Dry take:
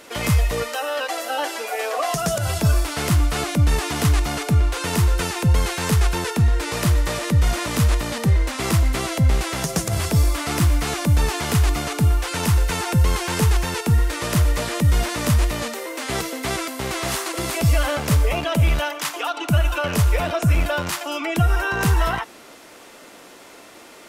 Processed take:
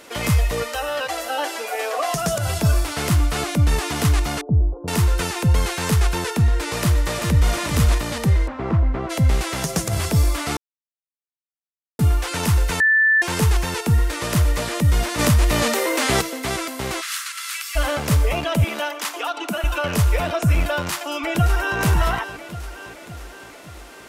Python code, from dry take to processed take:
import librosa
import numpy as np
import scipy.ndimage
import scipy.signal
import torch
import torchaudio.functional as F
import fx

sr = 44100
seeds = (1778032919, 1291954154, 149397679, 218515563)

y = fx.echo_feedback(x, sr, ms=380, feedback_pct=21, wet_db=-21.0, at=(0.74, 2.91), fade=0.02)
y = fx.gaussian_blur(y, sr, sigma=14.0, at=(4.41, 4.88))
y = fx.echo_throw(y, sr, start_s=6.82, length_s=0.77, ms=390, feedback_pct=15, wet_db=-6.5)
y = fx.lowpass(y, sr, hz=1200.0, slope=12, at=(8.46, 9.09), fade=0.02)
y = fx.env_flatten(y, sr, amount_pct=50, at=(15.18, 16.2), fade=0.02)
y = fx.ellip_highpass(y, sr, hz=1300.0, order=4, stop_db=70, at=(17.0, 17.75), fade=0.02)
y = fx.ellip_highpass(y, sr, hz=200.0, order=4, stop_db=40, at=(18.64, 19.64))
y = fx.echo_throw(y, sr, start_s=20.66, length_s=1.13, ms=570, feedback_pct=60, wet_db=-10.5)
y = fx.edit(y, sr, fx.silence(start_s=10.57, length_s=1.42),
    fx.bleep(start_s=12.8, length_s=0.42, hz=1760.0, db=-12.5), tone=tone)